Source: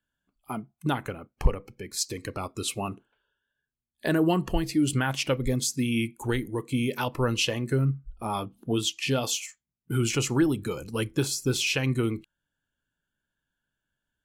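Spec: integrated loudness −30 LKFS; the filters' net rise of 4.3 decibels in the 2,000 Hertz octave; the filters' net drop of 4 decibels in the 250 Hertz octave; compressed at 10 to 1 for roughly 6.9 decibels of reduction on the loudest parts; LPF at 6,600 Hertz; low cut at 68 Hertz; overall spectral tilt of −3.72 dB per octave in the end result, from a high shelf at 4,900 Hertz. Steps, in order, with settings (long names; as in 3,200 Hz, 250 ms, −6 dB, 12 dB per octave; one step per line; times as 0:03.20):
high-pass filter 68 Hz
low-pass filter 6,600 Hz
parametric band 250 Hz −5.5 dB
parametric band 2,000 Hz +5 dB
high-shelf EQ 4,900 Hz +5.5 dB
downward compressor 10 to 1, threshold −27 dBFS
level +2.5 dB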